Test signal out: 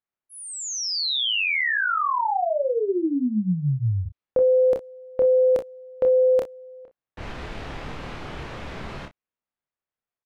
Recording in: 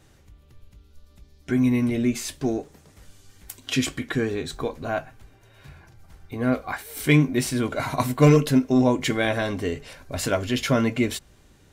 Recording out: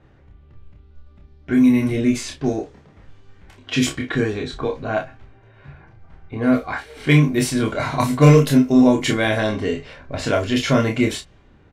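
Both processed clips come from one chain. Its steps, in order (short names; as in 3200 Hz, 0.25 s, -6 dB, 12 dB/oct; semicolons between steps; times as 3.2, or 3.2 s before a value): low-pass opened by the level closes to 1900 Hz, open at -18 dBFS; on a send: early reflections 28 ms -3.5 dB, 43 ms -12.5 dB, 60 ms -14 dB; on the sum: gain +2.5 dB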